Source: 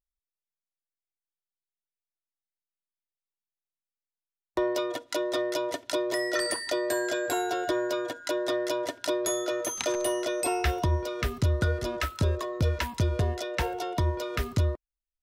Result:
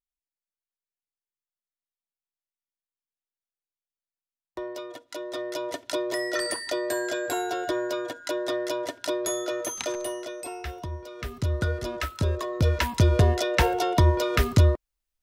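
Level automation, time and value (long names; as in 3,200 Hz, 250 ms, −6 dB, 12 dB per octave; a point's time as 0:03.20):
0:05.06 −8 dB
0:05.79 0 dB
0:09.73 0 dB
0:10.50 −9 dB
0:11.05 −9 dB
0:11.55 −0.5 dB
0:12.15 −0.5 dB
0:13.16 +7.5 dB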